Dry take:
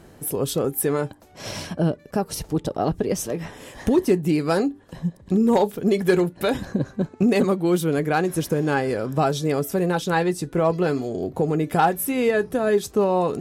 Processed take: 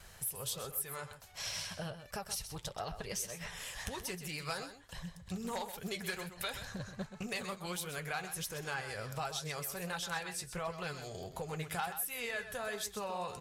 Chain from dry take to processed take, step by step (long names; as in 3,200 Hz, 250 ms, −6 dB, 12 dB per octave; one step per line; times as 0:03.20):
noise gate with hold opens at −43 dBFS
guitar amp tone stack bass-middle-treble 10-0-10
downward compressor 2.5 to 1, threshold −44 dBFS, peak gain reduction 15.5 dB
flanger 1.4 Hz, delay 1.6 ms, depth 9.8 ms, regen +61%
on a send: single-tap delay 128 ms −10.5 dB
on the sum: highs frequency-modulated by the lows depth 0.12 ms
level +8 dB